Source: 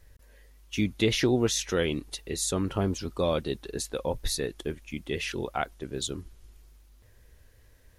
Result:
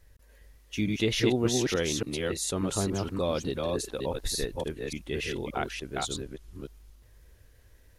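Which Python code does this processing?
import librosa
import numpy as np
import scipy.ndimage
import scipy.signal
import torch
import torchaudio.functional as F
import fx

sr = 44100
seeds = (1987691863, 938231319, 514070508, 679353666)

y = fx.reverse_delay(x, sr, ms=290, wet_db=-2)
y = y * librosa.db_to_amplitude(-2.5)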